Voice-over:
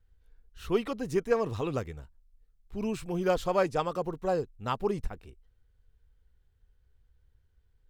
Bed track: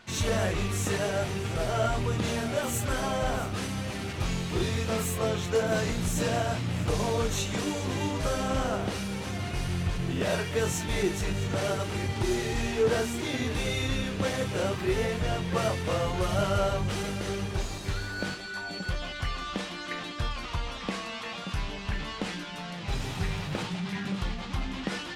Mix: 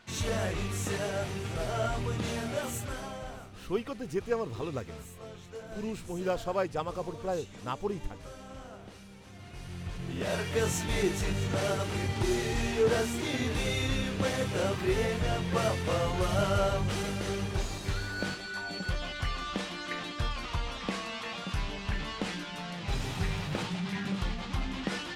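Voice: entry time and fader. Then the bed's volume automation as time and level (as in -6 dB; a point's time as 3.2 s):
3.00 s, -4.0 dB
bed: 2.61 s -4 dB
3.59 s -17.5 dB
9.22 s -17.5 dB
10.54 s -1 dB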